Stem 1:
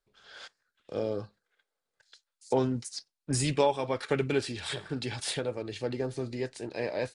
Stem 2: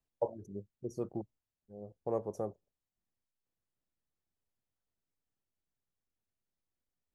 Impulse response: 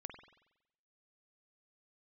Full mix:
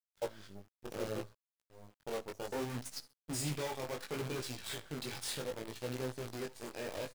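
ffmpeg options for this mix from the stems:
-filter_complex "[0:a]asoftclip=type=hard:threshold=-28dB,adynamicequalizer=threshold=0.00316:dfrequency=4300:dqfactor=0.7:tfrequency=4300:tqfactor=0.7:attack=5:release=100:ratio=0.375:range=2:mode=boostabove:tftype=highshelf,volume=-5dB,asplit=2[link_01][link_02];[link_02]volume=-13.5dB[link_03];[1:a]bandreject=frequency=54.68:width_type=h:width=4,bandreject=frequency=109.36:width_type=h:width=4,bandreject=frequency=164.04:width_type=h:width=4,volume=-3dB[link_04];[link_03]aecho=0:1:66|132|198|264:1|0.24|0.0576|0.0138[link_05];[link_01][link_04][link_05]amix=inputs=3:normalize=0,acrusher=bits=7:dc=4:mix=0:aa=0.000001,flanger=delay=15.5:depth=6.4:speed=0.67"

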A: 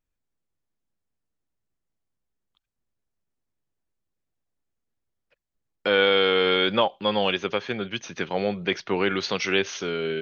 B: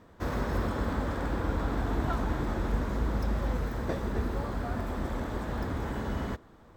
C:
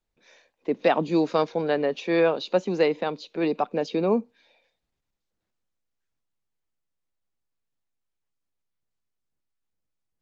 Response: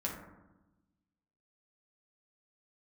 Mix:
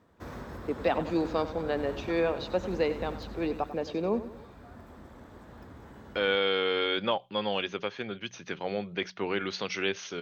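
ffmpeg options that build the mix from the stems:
-filter_complex "[0:a]bandreject=frequency=61.63:width_type=h:width=4,bandreject=frequency=123.26:width_type=h:width=4,bandreject=frequency=184.89:width_type=h:width=4,adelay=300,volume=-7dB[link_01];[1:a]highpass=66,alimiter=limit=-23dB:level=0:latency=1:release=437,volume=-7.5dB,afade=type=out:start_time=3.2:duration=0.6:silence=0.446684[link_02];[2:a]volume=-6.5dB,asplit=2[link_03][link_04];[link_04]volume=-13dB,aecho=0:1:95|190|285|380|475|570|665:1|0.47|0.221|0.104|0.0488|0.0229|0.0108[link_05];[link_01][link_02][link_03][link_05]amix=inputs=4:normalize=0"

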